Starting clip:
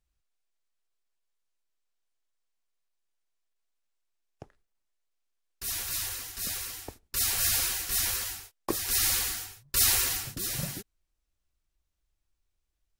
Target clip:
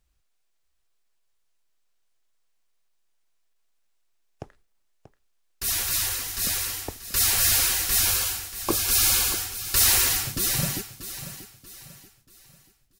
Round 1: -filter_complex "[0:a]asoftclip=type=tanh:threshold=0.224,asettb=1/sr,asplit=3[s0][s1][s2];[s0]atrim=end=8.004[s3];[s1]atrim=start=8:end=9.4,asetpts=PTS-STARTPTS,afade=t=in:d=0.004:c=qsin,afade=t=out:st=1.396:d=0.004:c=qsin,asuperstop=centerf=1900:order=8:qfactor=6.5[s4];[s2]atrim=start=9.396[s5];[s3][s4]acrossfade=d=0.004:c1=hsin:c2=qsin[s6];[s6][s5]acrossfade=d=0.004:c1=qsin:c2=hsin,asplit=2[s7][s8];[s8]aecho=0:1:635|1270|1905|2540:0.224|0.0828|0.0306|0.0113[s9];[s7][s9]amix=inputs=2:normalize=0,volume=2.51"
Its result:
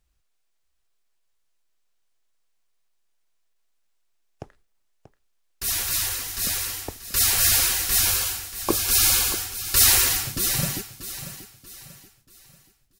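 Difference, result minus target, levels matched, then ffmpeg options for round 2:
saturation: distortion -12 dB
-filter_complex "[0:a]asoftclip=type=tanh:threshold=0.0794,asettb=1/sr,asplit=3[s0][s1][s2];[s0]atrim=end=8.004[s3];[s1]atrim=start=8:end=9.4,asetpts=PTS-STARTPTS,afade=t=in:d=0.004:c=qsin,afade=t=out:st=1.396:d=0.004:c=qsin,asuperstop=centerf=1900:order=8:qfactor=6.5[s4];[s2]atrim=start=9.396[s5];[s3][s4]acrossfade=d=0.004:c1=hsin:c2=qsin[s6];[s6][s5]acrossfade=d=0.004:c1=qsin:c2=hsin,asplit=2[s7][s8];[s8]aecho=0:1:635|1270|1905|2540:0.224|0.0828|0.0306|0.0113[s9];[s7][s9]amix=inputs=2:normalize=0,volume=2.51"

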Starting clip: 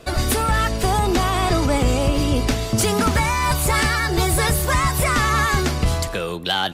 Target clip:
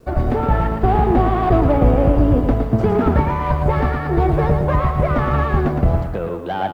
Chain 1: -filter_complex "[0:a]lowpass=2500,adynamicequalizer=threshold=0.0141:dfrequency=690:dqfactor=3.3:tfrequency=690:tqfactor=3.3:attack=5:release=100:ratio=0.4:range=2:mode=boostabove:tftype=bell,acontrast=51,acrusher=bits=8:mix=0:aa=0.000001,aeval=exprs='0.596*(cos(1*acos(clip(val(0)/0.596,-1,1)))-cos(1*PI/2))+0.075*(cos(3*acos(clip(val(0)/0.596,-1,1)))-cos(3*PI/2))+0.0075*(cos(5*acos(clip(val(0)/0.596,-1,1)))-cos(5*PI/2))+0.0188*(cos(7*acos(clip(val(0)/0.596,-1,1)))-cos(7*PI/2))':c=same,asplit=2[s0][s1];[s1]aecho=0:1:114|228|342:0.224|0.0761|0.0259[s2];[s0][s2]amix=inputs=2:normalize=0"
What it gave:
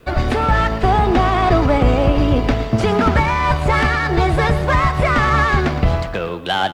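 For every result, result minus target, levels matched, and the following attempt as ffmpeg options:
2 kHz band +9.0 dB; echo-to-direct -7 dB
-filter_complex "[0:a]lowpass=870,adynamicequalizer=threshold=0.0141:dfrequency=690:dqfactor=3.3:tfrequency=690:tqfactor=3.3:attack=5:release=100:ratio=0.4:range=2:mode=boostabove:tftype=bell,acontrast=51,acrusher=bits=8:mix=0:aa=0.000001,aeval=exprs='0.596*(cos(1*acos(clip(val(0)/0.596,-1,1)))-cos(1*PI/2))+0.075*(cos(3*acos(clip(val(0)/0.596,-1,1)))-cos(3*PI/2))+0.0075*(cos(5*acos(clip(val(0)/0.596,-1,1)))-cos(5*PI/2))+0.0188*(cos(7*acos(clip(val(0)/0.596,-1,1)))-cos(7*PI/2))':c=same,asplit=2[s0][s1];[s1]aecho=0:1:114|228|342:0.224|0.0761|0.0259[s2];[s0][s2]amix=inputs=2:normalize=0"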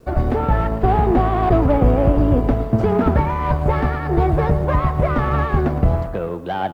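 echo-to-direct -7 dB
-filter_complex "[0:a]lowpass=870,adynamicequalizer=threshold=0.0141:dfrequency=690:dqfactor=3.3:tfrequency=690:tqfactor=3.3:attack=5:release=100:ratio=0.4:range=2:mode=boostabove:tftype=bell,acontrast=51,acrusher=bits=8:mix=0:aa=0.000001,aeval=exprs='0.596*(cos(1*acos(clip(val(0)/0.596,-1,1)))-cos(1*PI/2))+0.075*(cos(3*acos(clip(val(0)/0.596,-1,1)))-cos(3*PI/2))+0.0075*(cos(5*acos(clip(val(0)/0.596,-1,1)))-cos(5*PI/2))+0.0188*(cos(7*acos(clip(val(0)/0.596,-1,1)))-cos(7*PI/2))':c=same,asplit=2[s0][s1];[s1]aecho=0:1:114|228|342|456:0.501|0.17|0.0579|0.0197[s2];[s0][s2]amix=inputs=2:normalize=0"

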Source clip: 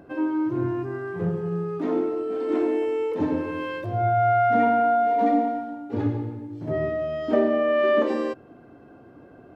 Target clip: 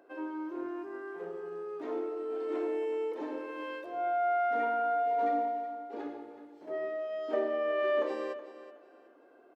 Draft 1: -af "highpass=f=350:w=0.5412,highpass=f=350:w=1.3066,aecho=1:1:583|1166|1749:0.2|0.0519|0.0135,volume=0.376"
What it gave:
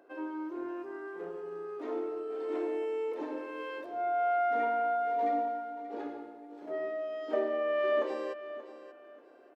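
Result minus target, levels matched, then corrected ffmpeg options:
echo 210 ms late
-af "highpass=f=350:w=0.5412,highpass=f=350:w=1.3066,aecho=1:1:373|746|1119:0.2|0.0519|0.0135,volume=0.376"

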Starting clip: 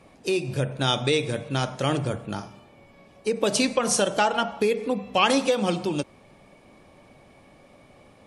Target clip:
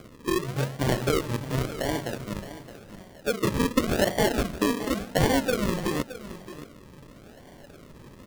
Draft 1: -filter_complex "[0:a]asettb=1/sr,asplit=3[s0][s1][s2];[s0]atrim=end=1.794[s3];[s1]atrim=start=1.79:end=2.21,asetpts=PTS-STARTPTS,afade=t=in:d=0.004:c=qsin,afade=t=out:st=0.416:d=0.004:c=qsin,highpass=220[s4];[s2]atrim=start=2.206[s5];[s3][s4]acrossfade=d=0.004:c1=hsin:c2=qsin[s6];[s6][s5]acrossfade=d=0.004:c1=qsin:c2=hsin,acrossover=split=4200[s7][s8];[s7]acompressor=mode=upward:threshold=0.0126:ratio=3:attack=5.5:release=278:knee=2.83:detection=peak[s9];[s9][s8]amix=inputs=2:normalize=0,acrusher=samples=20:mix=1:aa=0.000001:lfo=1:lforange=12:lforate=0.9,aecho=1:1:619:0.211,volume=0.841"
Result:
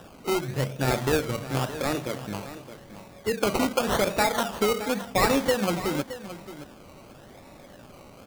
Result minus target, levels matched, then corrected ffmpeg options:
decimation with a swept rate: distortion -14 dB
-filter_complex "[0:a]asettb=1/sr,asplit=3[s0][s1][s2];[s0]atrim=end=1.794[s3];[s1]atrim=start=1.79:end=2.21,asetpts=PTS-STARTPTS,afade=t=in:d=0.004:c=qsin,afade=t=out:st=0.416:d=0.004:c=qsin,highpass=220[s4];[s2]atrim=start=2.206[s5];[s3][s4]acrossfade=d=0.004:c1=hsin:c2=qsin[s6];[s6][s5]acrossfade=d=0.004:c1=qsin:c2=hsin,acrossover=split=4200[s7][s8];[s7]acompressor=mode=upward:threshold=0.0126:ratio=3:attack=5.5:release=278:knee=2.83:detection=peak[s9];[s9][s8]amix=inputs=2:normalize=0,acrusher=samples=48:mix=1:aa=0.000001:lfo=1:lforange=28.8:lforate=0.9,aecho=1:1:619:0.211,volume=0.841"

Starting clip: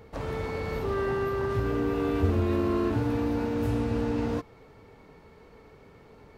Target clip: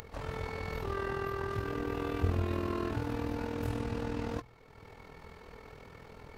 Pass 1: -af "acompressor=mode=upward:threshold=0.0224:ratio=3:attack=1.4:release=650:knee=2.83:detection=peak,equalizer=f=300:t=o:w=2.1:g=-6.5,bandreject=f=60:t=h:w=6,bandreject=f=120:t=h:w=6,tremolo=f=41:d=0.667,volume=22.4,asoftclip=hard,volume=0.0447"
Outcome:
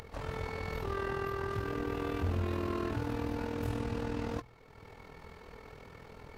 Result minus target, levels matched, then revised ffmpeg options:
overload inside the chain: distortion +32 dB
-af "acompressor=mode=upward:threshold=0.0224:ratio=3:attack=1.4:release=650:knee=2.83:detection=peak,equalizer=f=300:t=o:w=2.1:g=-6.5,bandreject=f=60:t=h:w=6,bandreject=f=120:t=h:w=6,tremolo=f=41:d=0.667,volume=7.08,asoftclip=hard,volume=0.141"

